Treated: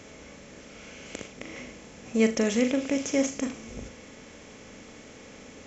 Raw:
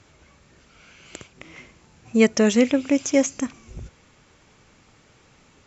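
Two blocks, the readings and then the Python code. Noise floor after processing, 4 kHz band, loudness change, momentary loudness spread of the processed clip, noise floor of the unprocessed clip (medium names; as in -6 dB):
-48 dBFS, -4.5 dB, -7.5 dB, 22 LU, -57 dBFS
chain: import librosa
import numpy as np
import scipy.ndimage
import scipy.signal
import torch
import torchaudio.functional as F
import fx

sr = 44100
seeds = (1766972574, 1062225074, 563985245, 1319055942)

y = fx.bin_compress(x, sr, power=0.6)
y = fx.room_flutter(y, sr, wall_m=6.9, rt60_s=0.27)
y = y * librosa.db_to_amplitude(-9.0)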